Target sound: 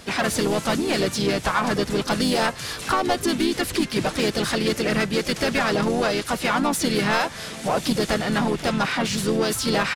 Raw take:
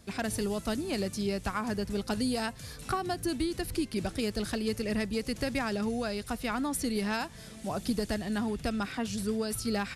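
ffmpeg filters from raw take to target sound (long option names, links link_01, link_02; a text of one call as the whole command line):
ffmpeg -i in.wav -filter_complex "[0:a]asplit=2[link_01][link_02];[link_02]highpass=frequency=720:poles=1,volume=17dB,asoftclip=type=tanh:threshold=-20dB[link_03];[link_01][link_03]amix=inputs=2:normalize=0,lowpass=frequency=4700:poles=1,volume=-6dB,asplit=4[link_04][link_05][link_06][link_07];[link_05]asetrate=29433,aresample=44100,atempo=1.49831,volume=-9dB[link_08];[link_06]asetrate=35002,aresample=44100,atempo=1.25992,volume=-6dB[link_09];[link_07]asetrate=52444,aresample=44100,atempo=0.840896,volume=-11dB[link_10];[link_04][link_08][link_09][link_10]amix=inputs=4:normalize=0,volume=5.5dB" out.wav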